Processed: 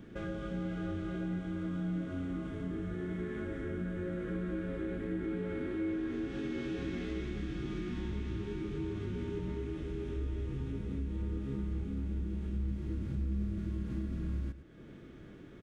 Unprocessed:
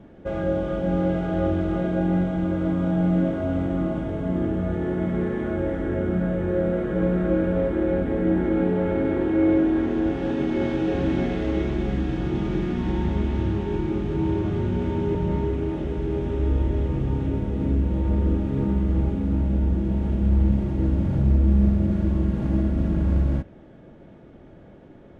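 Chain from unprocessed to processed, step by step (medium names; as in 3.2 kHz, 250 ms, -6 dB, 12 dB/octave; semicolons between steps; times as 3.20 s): time stretch by phase-locked vocoder 0.62×; high-order bell 710 Hz -9.5 dB 1 oct; on a send: delay 107 ms -16 dB; on the sum: compression 2:1, threshold -41 dBFS, peak gain reduction 14 dB; treble shelf 2.3 kHz +9 dB; band-stop 2.9 kHz, Q 24; trim -2 dB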